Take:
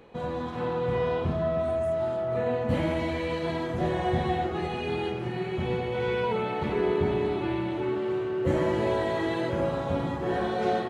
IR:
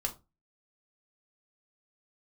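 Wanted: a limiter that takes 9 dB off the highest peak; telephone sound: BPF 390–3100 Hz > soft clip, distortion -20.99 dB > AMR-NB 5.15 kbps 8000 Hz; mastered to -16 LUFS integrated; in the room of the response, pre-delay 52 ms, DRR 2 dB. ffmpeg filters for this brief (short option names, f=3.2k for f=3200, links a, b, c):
-filter_complex "[0:a]alimiter=limit=-23dB:level=0:latency=1,asplit=2[a][b];[1:a]atrim=start_sample=2205,adelay=52[c];[b][c]afir=irnorm=-1:irlink=0,volume=-4.5dB[d];[a][d]amix=inputs=2:normalize=0,highpass=390,lowpass=3.1k,asoftclip=threshold=-24.5dB,volume=20dB" -ar 8000 -c:a libopencore_amrnb -b:a 5150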